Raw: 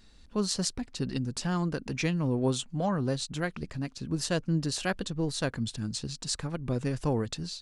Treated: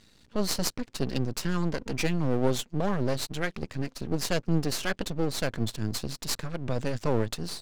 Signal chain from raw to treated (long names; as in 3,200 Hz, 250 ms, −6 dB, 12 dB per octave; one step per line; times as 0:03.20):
loudspeaker in its box 100–8,100 Hz, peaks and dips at 110 Hz +4 dB, 760 Hz −7 dB, 1,200 Hz −4 dB
half-wave rectification
level +6.5 dB